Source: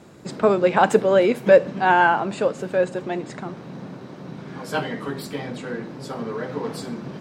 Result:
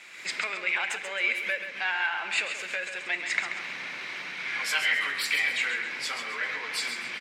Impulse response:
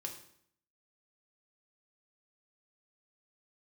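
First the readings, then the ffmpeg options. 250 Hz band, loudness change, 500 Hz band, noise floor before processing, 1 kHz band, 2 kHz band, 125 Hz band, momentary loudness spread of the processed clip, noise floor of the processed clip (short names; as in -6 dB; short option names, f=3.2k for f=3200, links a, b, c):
-24.5 dB, -7.5 dB, -23.5 dB, -40 dBFS, -15.0 dB, +1.5 dB, under -25 dB, 9 LU, -40 dBFS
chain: -filter_complex "[0:a]dynaudnorm=f=110:g=3:m=6.5dB,asplit=2[a][b];[b]alimiter=limit=-9dB:level=0:latency=1,volume=2dB[c];[a][c]amix=inputs=2:normalize=0,acompressor=threshold=-20dB:ratio=3,asoftclip=type=tanh:threshold=-11dB,bandpass=f=2.2k:t=q:w=4.9:csg=0,crystalizer=i=8:c=0,aecho=1:1:134|268|402|536:0.398|0.155|0.0606|0.0236,asplit=2[d][e];[1:a]atrim=start_sample=2205[f];[e][f]afir=irnorm=-1:irlink=0,volume=-7dB[g];[d][g]amix=inputs=2:normalize=0"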